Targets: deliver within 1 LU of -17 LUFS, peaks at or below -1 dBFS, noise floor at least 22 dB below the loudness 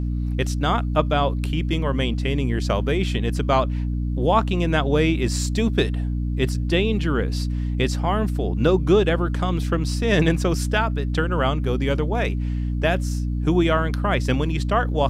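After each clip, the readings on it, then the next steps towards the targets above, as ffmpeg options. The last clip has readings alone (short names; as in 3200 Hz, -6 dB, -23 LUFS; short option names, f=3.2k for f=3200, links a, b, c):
hum 60 Hz; harmonics up to 300 Hz; hum level -21 dBFS; loudness -22.0 LUFS; peak -5.5 dBFS; loudness target -17.0 LUFS
-> -af "bandreject=f=60:t=h:w=4,bandreject=f=120:t=h:w=4,bandreject=f=180:t=h:w=4,bandreject=f=240:t=h:w=4,bandreject=f=300:t=h:w=4"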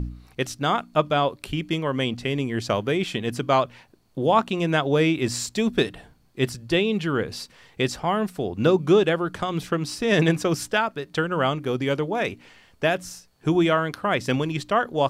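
hum none; loudness -24.0 LUFS; peak -7.0 dBFS; loudness target -17.0 LUFS
-> -af "volume=7dB,alimiter=limit=-1dB:level=0:latency=1"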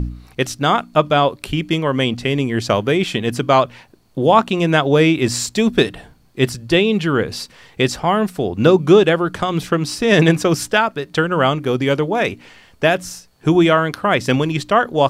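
loudness -17.0 LUFS; peak -1.0 dBFS; noise floor -51 dBFS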